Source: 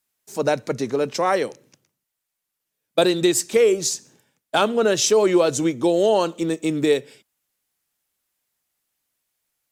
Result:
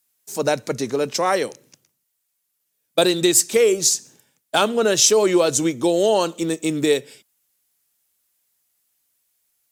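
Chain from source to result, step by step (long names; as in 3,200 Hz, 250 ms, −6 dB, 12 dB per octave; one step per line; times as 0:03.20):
high-shelf EQ 4,400 Hz +9 dB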